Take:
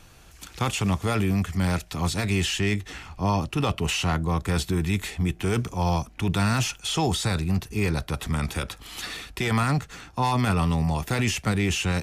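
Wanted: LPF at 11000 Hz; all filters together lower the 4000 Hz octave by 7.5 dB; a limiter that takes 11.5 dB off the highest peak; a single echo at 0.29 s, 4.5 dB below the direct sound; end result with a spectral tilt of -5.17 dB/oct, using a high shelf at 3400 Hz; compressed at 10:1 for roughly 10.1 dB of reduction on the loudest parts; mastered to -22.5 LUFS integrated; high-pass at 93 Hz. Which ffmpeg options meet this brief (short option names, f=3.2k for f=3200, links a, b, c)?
-af "highpass=93,lowpass=11k,highshelf=f=3.4k:g=-7,equalizer=f=4k:t=o:g=-5.5,acompressor=threshold=-31dB:ratio=10,alimiter=level_in=6.5dB:limit=-24dB:level=0:latency=1,volume=-6.5dB,aecho=1:1:290:0.596,volume=15.5dB"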